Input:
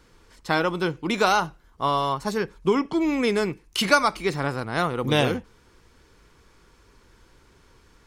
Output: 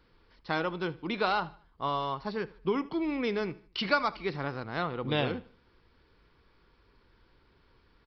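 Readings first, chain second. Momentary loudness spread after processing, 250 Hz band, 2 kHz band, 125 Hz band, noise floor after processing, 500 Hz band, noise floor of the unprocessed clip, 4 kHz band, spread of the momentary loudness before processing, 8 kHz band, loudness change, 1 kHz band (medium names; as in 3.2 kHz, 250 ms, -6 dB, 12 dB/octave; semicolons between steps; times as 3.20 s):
8 LU, -8.0 dB, -8.0 dB, -8.0 dB, -66 dBFS, -8.0 dB, -58 dBFS, -8.5 dB, 8 LU, under -25 dB, -8.0 dB, -8.0 dB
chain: resampled via 11.025 kHz; feedback delay 76 ms, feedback 40%, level -21 dB; trim -8 dB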